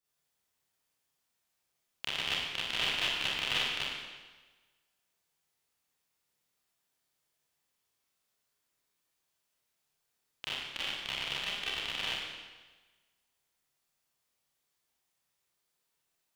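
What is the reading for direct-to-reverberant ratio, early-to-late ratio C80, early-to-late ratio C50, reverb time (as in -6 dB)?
-10.5 dB, 0.5 dB, -2.5 dB, 1.3 s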